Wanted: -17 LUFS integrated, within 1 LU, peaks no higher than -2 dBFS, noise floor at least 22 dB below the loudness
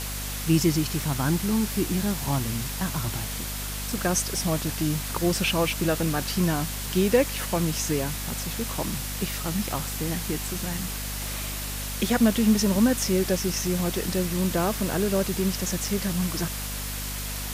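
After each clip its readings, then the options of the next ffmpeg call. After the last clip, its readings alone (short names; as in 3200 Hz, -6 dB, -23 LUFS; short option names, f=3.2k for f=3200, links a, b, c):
hum 50 Hz; harmonics up to 250 Hz; hum level -33 dBFS; noise floor -32 dBFS; noise floor target -48 dBFS; loudness -26.0 LUFS; peak -8.5 dBFS; loudness target -17.0 LUFS
-> -af "bandreject=f=50:t=h:w=4,bandreject=f=100:t=h:w=4,bandreject=f=150:t=h:w=4,bandreject=f=200:t=h:w=4,bandreject=f=250:t=h:w=4"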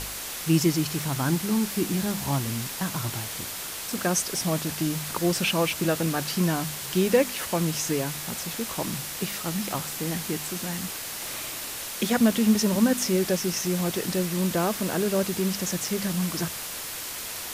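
hum none; noise floor -35 dBFS; noise floor target -49 dBFS
-> -af "afftdn=nr=14:nf=-35"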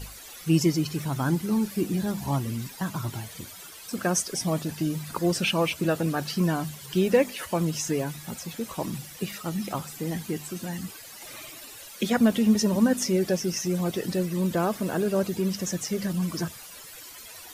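noise floor -44 dBFS; noise floor target -49 dBFS
-> -af "afftdn=nr=6:nf=-44"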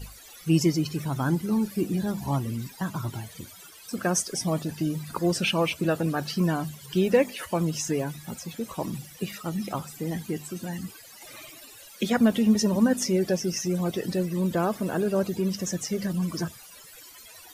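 noise floor -48 dBFS; noise floor target -49 dBFS
-> -af "afftdn=nr=6:nf=-48"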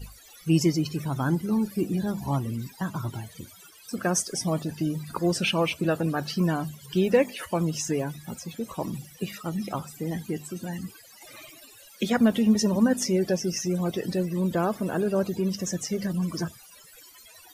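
noise floor -51 dBFS; loudness -27.0 LUFS; peak -9.5 dBFS; loudness target -17.0 LUFS
-> -af "volume=10dB,alimiter=limit=-2dB:level=0:latency=1"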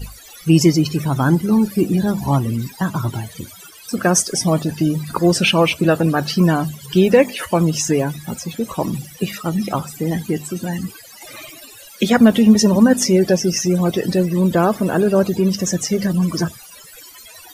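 loudness -17.5 LUFS; peak -2.0 dBFS; noise floor -41 dBFS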